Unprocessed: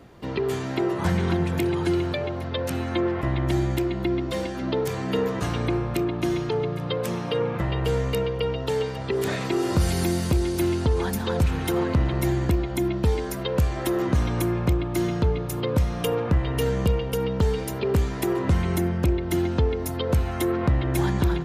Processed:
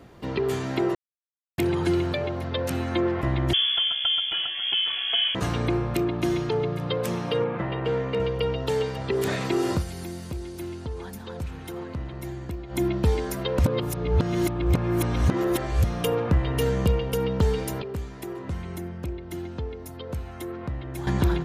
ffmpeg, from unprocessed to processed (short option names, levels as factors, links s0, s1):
-filter_complex "[0:a]asettb=1/sr,asplit=3[s0][s1][s2];[s0]atrim=end=3.534[s3];[s1]atrim=start=3.53:end=5.35,asetpts=PTS-STARTPTS,afade=t=in:d=0.004:c=qsin,afade=t=out:st=1.816:d=0.004:c=qsin,lowpass=f=3000:t=q:w=0.5098,lowpass=f=3000:t=q:w=0.6013,lowpass=f=3000:t=q:w=0.9,lowpass=f=3000:t=q:w=2.563,afreqshift=-3500[s4];[s2]atrim=start=5.346[s5];[s3][s4]acrossfade=d=0.004:c1=hsin:c2=qsin[s6];[s6][s5]acrossfade=d=0.004:c1=qsin:c2=hsin,asettb=1/sr,asplit=3[s7][s8][s9];[s7]atrim=end=7.444[s10];[s8]atrim=start=7.44:end=8.2,asetpts=PTS-STARTPTS,afade=t=in:d=0.004:c=qsin,afade=t=out:st=0.756:d=0.004:c=qsin,highpass=150,lowpass=2800[s11];[s9]atrim=start=8.196[s12];[s10][s11]acrossfade=d=0.004:c1=hsin:c2=qsin[s13];[s13][s12]acrossfade=d=0.004:c1=qsin:c2=hsin,asplit=9[s14][s15][s16][s17][s18][s19][s20][s21][s22];[s14]atrim=end=0.95,asetpts=PTS-STARTPTS,afade=t=out:st=0.946:d=0.004:c=hsin[s23];[s15]atrim=start=0.95:end=1.58,asetpts=PTS-STARTPTS,volume=0[s24];[s16]atrim=start=1.58:end=9.84,asetpts=PTS-STARTPTS,afade=t=in:d=0.004:c=hsin,afade=t=out:st=8.13:d=0.13:silence=0.266073[s25];[s17]atrim=start=9.84:end=12.67,asetpts=PTS-STARTPTS,volume=0.266[s26];[s18]atrim=start=12.67:end=13.592,asetpts=PTS-STARTPTS,afade=t=in:d=0.13:silence=0.266073[s27];[s19]atrim=start=13.588:end=15.842,asetpts=PTS-STARTPTS,areverse[s28];[s20]atrim=start=15.838:end=17.822[s29];[s21]atrim=start=17.818:end=21.072,asetpts=PTS-STARTPTS,volume=0.299[s30];[s22]atrim=start=21.068[s31];[s23][s24][s25][s26][s27]concat=n=5:v=0:a=1[s32];[s32][s28]acrossfade=d=0.004:c1=hsin:c2=hsin[s33];[s33][s29]acrossfade=d=0.004:c1=hsin:c2=hsin[s34];[s34][s30]acrossfade=d=0.004:c1=hsin:c2=hsin[s35];[s35][s31]acrossfade=d=0.004:c1=hsin:c2=hsin"